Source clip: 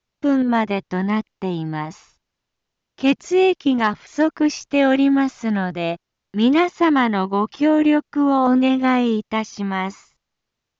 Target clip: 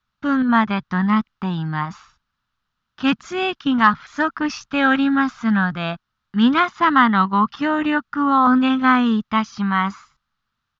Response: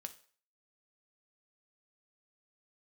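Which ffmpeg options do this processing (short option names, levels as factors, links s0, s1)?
-af "firequalizer=gain_entry='entry(230,0);entry(340,-13);entry(520,-12);entry(1300,10);entry(2100,-4);entry(3600,0);entry(6200,-9)':delay=0.05:min_phase=1,volume=1.41"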